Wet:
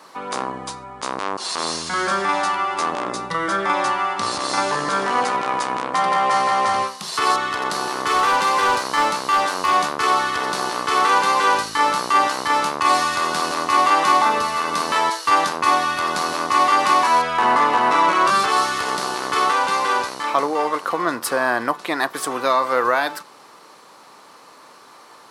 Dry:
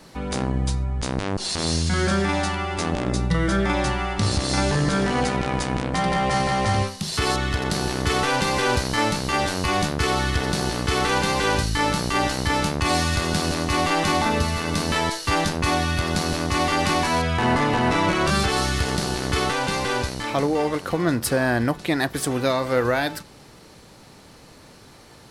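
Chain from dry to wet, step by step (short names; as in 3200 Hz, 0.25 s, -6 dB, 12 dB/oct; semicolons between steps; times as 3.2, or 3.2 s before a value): HPF 360 Hz 12 dB/oct; bell 1100 Hz +12 dB 0.69 oct; 7.68–9.74 overloaded stage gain 12.5 dB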